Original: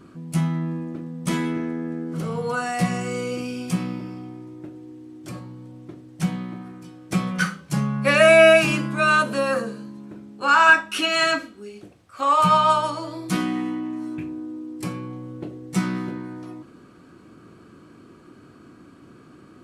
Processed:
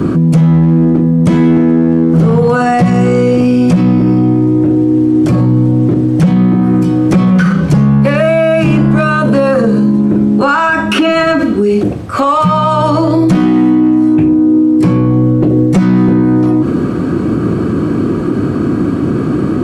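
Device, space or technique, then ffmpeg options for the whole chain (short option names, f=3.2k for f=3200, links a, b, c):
mastering chain: -filter_complex "[0:a]highpass=49,equalizer=f=880:t=o:w=1.9:g=-2.5,acrossover=split=130|2500|7100[a][b][c][d];[a]acompressor=threshold=-37dB:ratio=4[e];[b]acompressor=threshold=-27dB:ratio=4[f];[c]acompressor=threshold=-41dB:ratio=4[g];[d]acompressor=threshold=-56dB:ratio=4[h];[e][f][g][h]amix=inputs=4:normalize=0,acompressor=threshold=-30dB:ratio=2.5,asoftclip=type=tanh:threshold=-21dB,tiltshelf=f=1.3k:g=8,asoftclip=type=hard:threshold=-21dB,alimiter=level_in=31.5dB:limit=-1dB:release=50:level=0:latency=1,volume=-2.5dB"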